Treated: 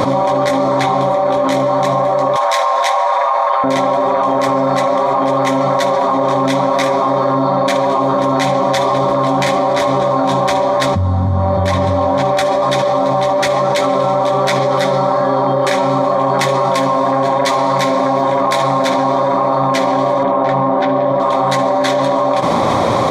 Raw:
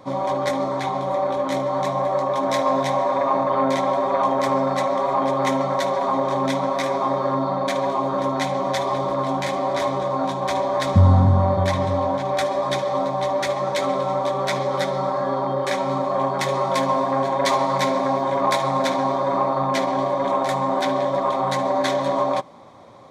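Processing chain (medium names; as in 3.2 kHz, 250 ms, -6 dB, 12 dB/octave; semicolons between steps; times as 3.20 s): 2.36–3.64 s: high-pass 680 Hz 24 dB/octave; 20.23–21.20 s: tape spacing loss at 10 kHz 30 dB; level flattener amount 100%; trim -4 dB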